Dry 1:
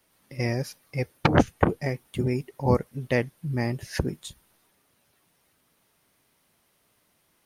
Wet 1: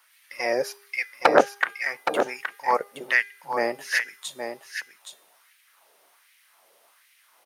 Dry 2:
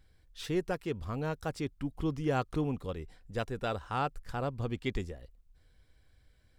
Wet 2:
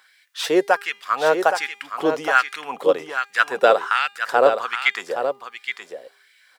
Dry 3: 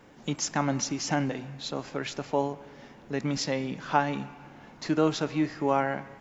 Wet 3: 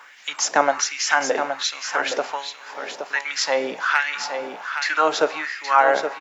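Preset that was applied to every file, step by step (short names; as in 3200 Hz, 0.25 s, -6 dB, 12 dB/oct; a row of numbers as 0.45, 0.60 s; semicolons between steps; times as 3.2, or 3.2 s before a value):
in parallel at -3 dB: compressor, threshold -35 dBFS; on the sum: HPF 130 Hz 24 dB/oct; hard clip -9.5 dBFS; LFO high-pass sine 1.3 Hz 490–2200 Hz; de-hum 403.6 Hz, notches 30; on a send: echo 0.82 s -7.5 dB; on the sum: dynamic EQ 1500 Hz, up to +5 dB, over -43 dBFS, Q 2.4; normalise peaks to -2 dBFS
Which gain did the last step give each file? +1.5, +11.5, +6.0 dB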